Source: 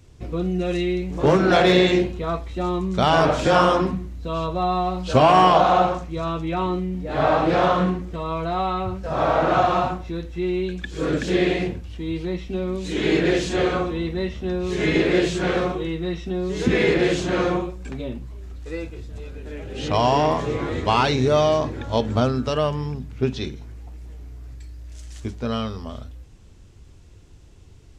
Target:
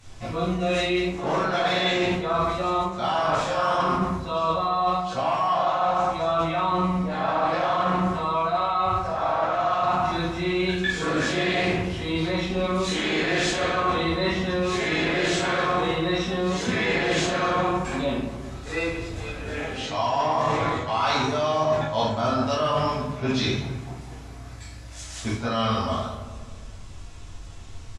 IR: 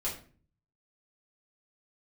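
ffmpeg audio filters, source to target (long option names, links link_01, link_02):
-filter_complex "[0:a]lowshelf=frequency=580:width_type=q:width=1.5:gain=-8[link_01];[1:a]atrim=start_sample=2205,asetrate=23373,aresample=44100[link_02];[link_01][link_02]afir=irnorm=-1:irlink=0,areverse,acompressor=threshold=-23dB:ratio=20,areverse,asplit=2[link_03][link_04];[link_04]adelay=207,lowpass=frequency=1200:poles=1,volume=-11.5dB,asplit=2[link_05][link_06];[link_06]adelay=207,lowpass=frequency=1200:poles=1,volume=0.54,asplit=2[link_07][link_08];[link_08]adelay=207,lowpass=frequency=1200:poles=1,volume=0.54,asplit=2[link_09][link_10];[link_10]adelay=207,lowpass=frequency=1200:poles=1,volume=0.54,asplit=2[link_11][link_12];[link_12]adelay=207,lowpass=frequency=1200:poles=1,volume=0.54,asplit=2[link_13][link_14];[link_14]adelay=207,lowpass=frequency=1200:poles=1,volume=0.54[link_15];[link_03][link_05][link_07][link_09][link_11][link_13][link_15]amix=inputs=7:normalize=0,volume=3dB"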